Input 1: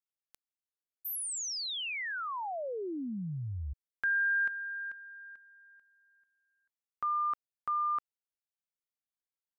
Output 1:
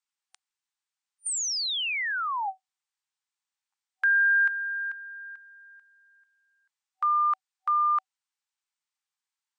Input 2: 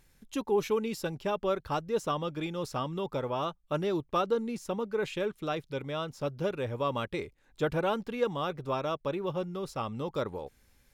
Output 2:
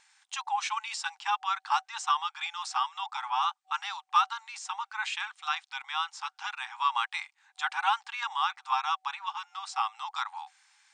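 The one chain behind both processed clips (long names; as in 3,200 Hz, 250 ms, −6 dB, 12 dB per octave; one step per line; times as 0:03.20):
brick-wall band-pass 760–9,100 Hz
level +7.5 dB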